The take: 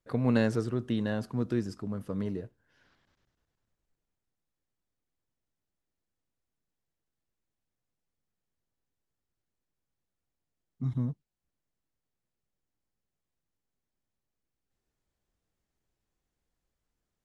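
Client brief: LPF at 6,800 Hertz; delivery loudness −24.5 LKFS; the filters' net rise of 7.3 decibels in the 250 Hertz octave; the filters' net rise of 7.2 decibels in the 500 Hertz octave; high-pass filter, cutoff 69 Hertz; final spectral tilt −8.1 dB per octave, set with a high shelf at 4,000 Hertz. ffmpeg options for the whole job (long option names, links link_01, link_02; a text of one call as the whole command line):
ffmpeg -i in.wav -af "highpass=69,lowpass=6800,equalizer=frequency=250:width_type=o:gain=7,equalizer=frequency=500:width_type=o:gain=6.5,highshelf=frequency=4000:gain=-7.5,volume=1dB" out.wav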